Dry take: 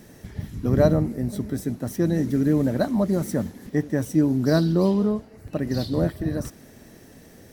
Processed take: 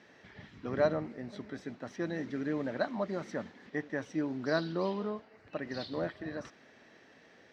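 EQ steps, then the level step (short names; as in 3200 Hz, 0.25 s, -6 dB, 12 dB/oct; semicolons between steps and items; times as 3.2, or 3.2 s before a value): band-pass 2400 Hz, Q 0.57; air absorption 180 m; 0.0 dB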